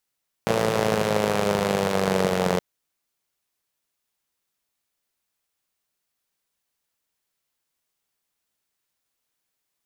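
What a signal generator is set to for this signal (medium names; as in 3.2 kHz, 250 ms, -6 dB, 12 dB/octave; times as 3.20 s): four-cylinder engine model, changing speed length 2.12 s, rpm 3400, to 2700, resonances 180/460 Hz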